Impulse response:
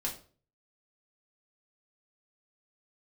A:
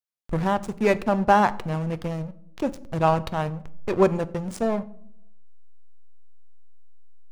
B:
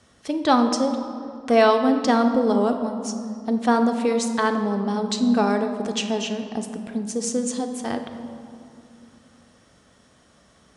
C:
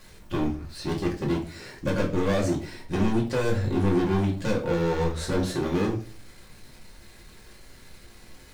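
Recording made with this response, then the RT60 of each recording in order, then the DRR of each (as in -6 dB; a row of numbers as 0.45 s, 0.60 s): C; no single decay rate, 2.7 s, 0.45 s; 12.5 dB, 5.5 dB, -3.0 dB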